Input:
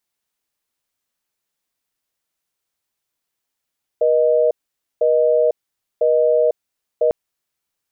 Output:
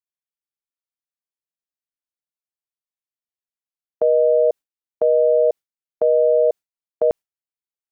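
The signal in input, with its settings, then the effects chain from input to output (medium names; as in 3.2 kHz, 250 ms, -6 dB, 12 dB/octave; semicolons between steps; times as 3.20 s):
call progress tone busy tone, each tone -15 dBFS 3.10 s
gate with hold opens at -12 dBFS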